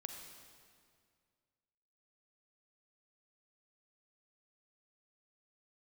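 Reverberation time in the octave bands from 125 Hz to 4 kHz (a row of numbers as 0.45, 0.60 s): 2.4, 2.2, 2.2, 2.0, 1.9, 1.8 s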